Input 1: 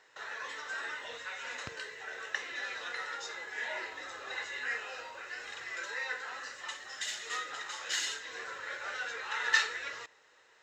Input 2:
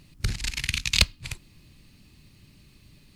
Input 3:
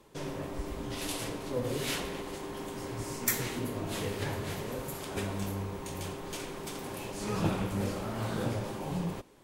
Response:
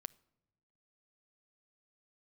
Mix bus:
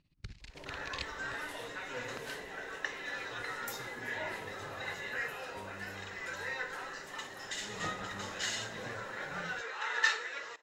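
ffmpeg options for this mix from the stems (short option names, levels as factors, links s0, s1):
-filter_complex "[0:a]highpass=f=200:p=1,equalizer=f=480:w=0.41:g=5.5,adelay=500,volume=0.668[s0];[1:a]lowpass=4800,tremolo=f=16:d=0.76,volume=0.141[s1];[2:a]equalizer=f=710:w=1:g=7.5,adelay=400,volume=0.158[s2];[s0][s1][s2]amix=inputs=3:normalize=0"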